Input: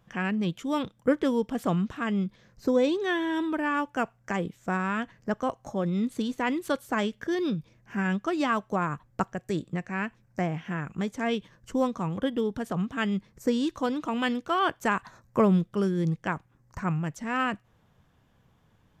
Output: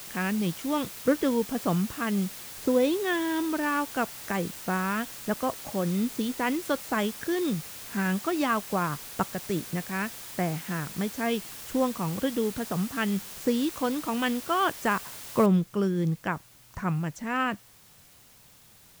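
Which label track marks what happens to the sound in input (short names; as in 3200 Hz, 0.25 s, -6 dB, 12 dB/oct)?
15.460000	15.460000	noise floor step -42 dB -56 dB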